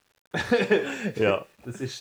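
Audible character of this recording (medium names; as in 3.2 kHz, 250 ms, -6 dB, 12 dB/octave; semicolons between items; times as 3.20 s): a quantiser's noise floor 10-bit, dither none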